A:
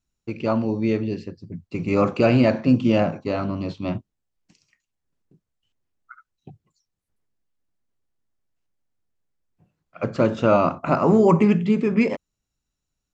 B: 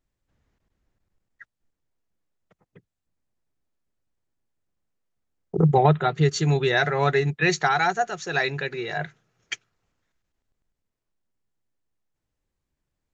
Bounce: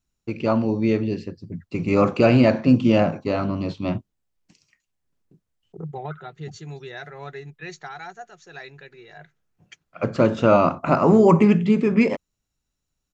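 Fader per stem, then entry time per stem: +1.5, -15.5 dB; 0.00, 0.20 s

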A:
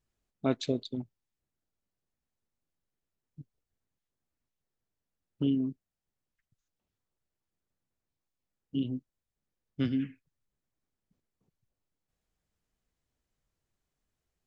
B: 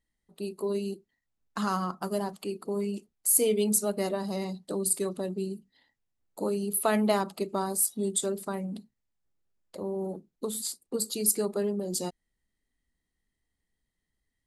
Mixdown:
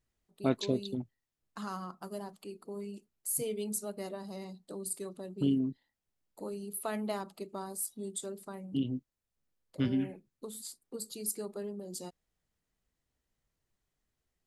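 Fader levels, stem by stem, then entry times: -0.5, -10.5 dB; 0.00, 0.00 s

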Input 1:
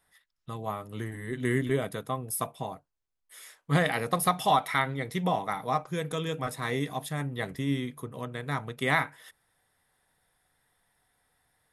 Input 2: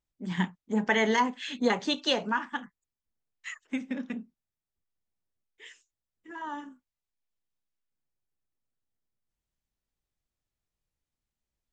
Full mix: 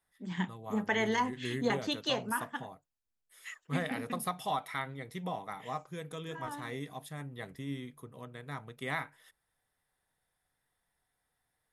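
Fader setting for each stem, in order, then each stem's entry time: -10.0, -5.5 dB; 0.00, 0.00 s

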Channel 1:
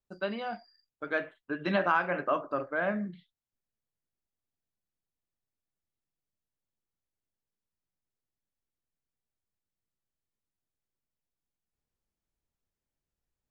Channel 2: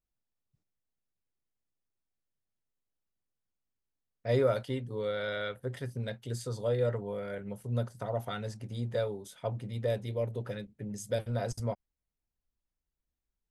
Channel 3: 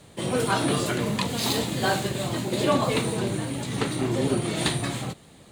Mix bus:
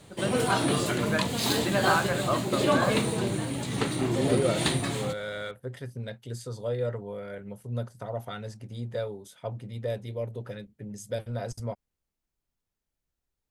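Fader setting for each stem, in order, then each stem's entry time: +0.5, -0.5, -1.5 dB; 0.00, 0.00, 0.00 s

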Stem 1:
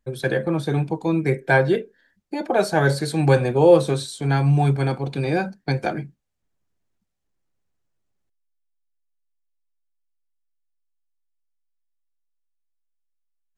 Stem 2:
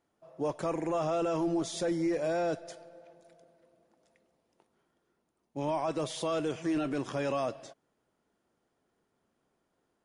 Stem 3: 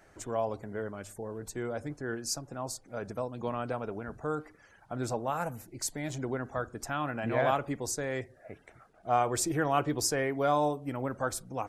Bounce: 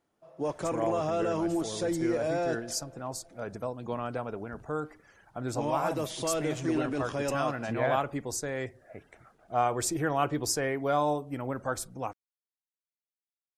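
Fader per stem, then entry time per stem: off, +0.5 dB, 0.0 dB; off, 0.00 s, 0.45 s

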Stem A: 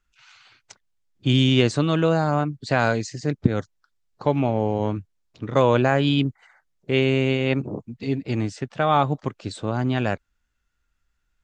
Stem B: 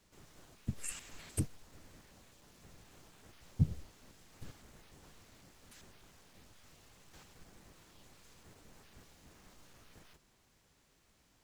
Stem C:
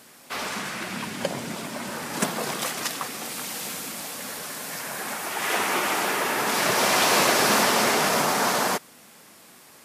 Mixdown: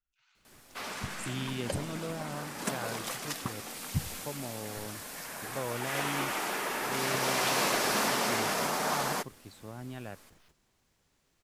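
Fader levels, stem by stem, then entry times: -19.0, -2.5, -8.5 dB; 0.00, 0.35, 0.45 s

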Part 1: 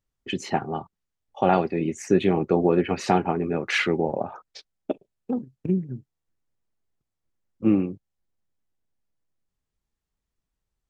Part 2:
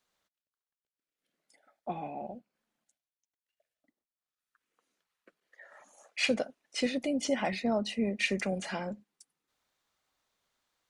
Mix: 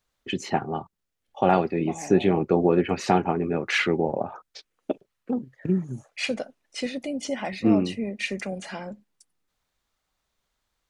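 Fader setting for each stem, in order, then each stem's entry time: 0.0, +0.5 dB; 0.00, 0.00 s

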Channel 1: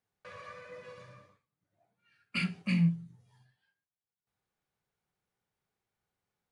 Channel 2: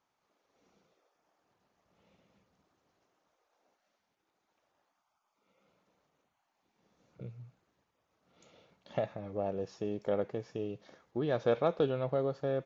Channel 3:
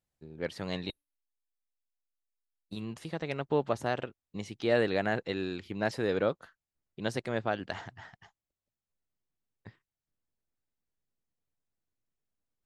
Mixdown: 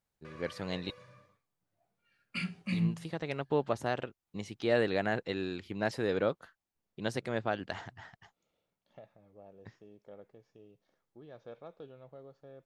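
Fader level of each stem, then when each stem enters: -4.0, -19.5, -1.5 dB; 0.00, 0.00, 0.00 s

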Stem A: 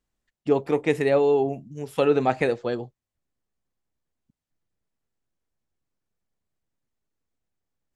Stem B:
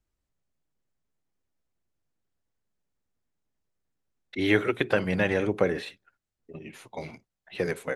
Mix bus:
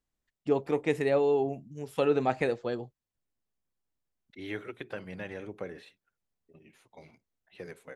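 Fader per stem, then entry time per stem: -5.5, -15.0 dB; 0.00, 0.00 s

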